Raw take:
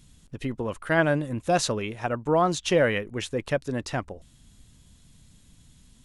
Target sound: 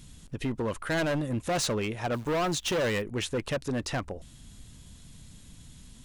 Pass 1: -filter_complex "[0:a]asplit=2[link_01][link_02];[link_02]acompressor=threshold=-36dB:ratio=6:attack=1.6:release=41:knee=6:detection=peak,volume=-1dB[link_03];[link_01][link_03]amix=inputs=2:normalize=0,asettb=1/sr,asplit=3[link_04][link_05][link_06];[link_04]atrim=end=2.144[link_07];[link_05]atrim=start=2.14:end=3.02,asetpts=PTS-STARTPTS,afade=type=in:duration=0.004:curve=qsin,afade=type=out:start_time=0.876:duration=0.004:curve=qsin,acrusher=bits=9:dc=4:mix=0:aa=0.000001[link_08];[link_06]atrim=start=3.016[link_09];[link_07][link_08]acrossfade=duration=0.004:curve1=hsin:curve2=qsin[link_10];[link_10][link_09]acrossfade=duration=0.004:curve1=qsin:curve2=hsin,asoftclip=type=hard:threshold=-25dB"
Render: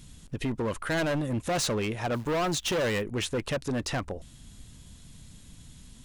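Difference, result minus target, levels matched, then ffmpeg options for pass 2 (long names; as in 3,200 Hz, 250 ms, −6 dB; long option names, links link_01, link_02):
downward compressor: peak gain reduction −9 dB
-filter_complex "[0:a]asplit=2[link_01][link_02];[link_02]acompressor=threshold=-46.5dB:ratio=6:attack=1.6:release=41:knee=6:detection=peak,volume=-1dB[link_03];[link_01][link_03]amix=inputs=2:normalize=0,asettb=1/sr,asplit=3[link_04][link_05][link_06];[link_04]atrim=end=2.144[link_07];[link_05]atrim=start=2.14:end=3.02,asetpts=PTS-STARTPTS,afade=type=in:duration=0.004:curve=qsin,afade=type=out:start_time=0.876:duration=0.004:curve=qsin,acrusher=bits=9:dc=4:mix=0:aa=0.000001[link_08];[link_06]atrim=start=3.016[link_09];[link_07][link_08]acrossfade=duration=0.004:curve1=hsin:curve2=qsin[link_10];[link_10][link_09]acrossfade=duration=0.004:curve1=qsin:curve2=hsin,asoftclip=type=hard:threshold=-25dB"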